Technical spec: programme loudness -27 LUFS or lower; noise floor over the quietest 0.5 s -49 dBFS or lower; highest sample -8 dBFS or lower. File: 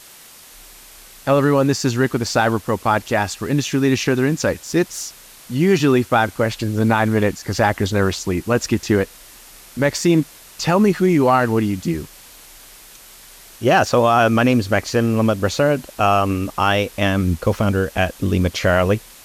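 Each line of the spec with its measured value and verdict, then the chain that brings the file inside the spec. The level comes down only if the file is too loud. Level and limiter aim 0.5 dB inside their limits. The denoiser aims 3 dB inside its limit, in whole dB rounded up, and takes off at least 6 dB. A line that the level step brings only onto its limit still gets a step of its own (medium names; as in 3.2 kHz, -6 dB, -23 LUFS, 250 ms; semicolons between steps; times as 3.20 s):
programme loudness -18.5 LUFS: fail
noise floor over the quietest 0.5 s -43 dBFS: fail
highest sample -4.5 dBFS: fail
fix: trim -9 dB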